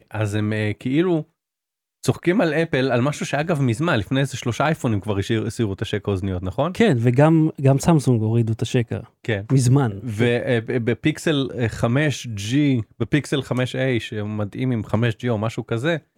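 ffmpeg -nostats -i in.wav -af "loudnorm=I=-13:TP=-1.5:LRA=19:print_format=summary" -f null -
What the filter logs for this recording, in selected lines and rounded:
Input Integrated:    -21.4 LUFS
Input True Peak:      -4.1 dBTP
Input LRA:             4.2 LU
Input Threshold:     -31.5 LUFS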